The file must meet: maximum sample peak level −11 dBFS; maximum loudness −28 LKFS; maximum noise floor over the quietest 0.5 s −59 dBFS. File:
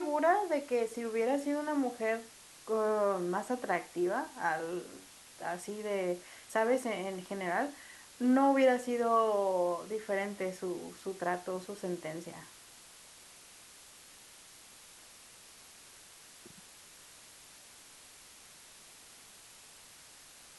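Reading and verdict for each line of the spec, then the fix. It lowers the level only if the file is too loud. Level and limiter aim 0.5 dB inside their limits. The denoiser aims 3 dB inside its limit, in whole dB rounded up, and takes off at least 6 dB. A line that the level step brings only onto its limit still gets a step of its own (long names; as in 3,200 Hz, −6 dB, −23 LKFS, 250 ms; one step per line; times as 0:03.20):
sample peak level −16.0 dBFS: in spec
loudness −33.0 LKFS: in spec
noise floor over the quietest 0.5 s −56 dBFS: out of spec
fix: broadband denoise 6 dB, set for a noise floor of −56 dBFS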